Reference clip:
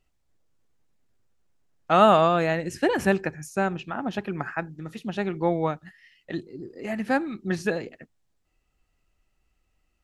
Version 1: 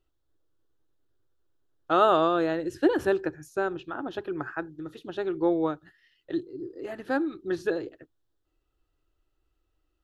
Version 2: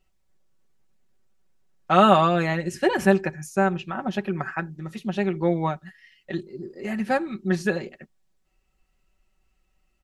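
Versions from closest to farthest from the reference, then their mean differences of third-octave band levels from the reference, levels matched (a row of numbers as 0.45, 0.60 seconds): 2, 1; 1.5, 3.5 decibels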